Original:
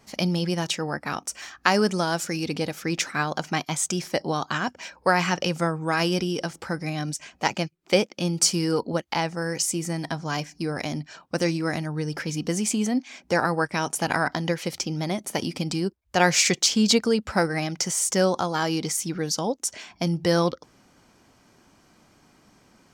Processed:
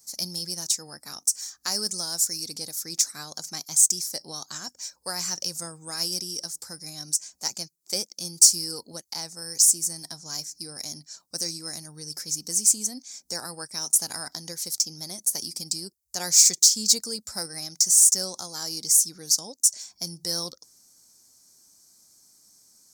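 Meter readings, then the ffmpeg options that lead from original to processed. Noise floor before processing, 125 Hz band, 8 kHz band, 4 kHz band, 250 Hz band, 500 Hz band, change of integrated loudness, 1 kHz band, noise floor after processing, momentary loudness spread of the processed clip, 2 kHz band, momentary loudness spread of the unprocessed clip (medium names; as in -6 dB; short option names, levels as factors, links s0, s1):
-61 dBFS, -16.5 dB, +8.5 dB, +2.0 dB, -16.5 dB, -16.5 dB, +2.0 dB, -16.5 dB, -68 dBFS, 19 LU, -16.5 dB, 9 LU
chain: -af "aexciter=amount=11.4:drive=9.3:freq=4500,volume=0.15"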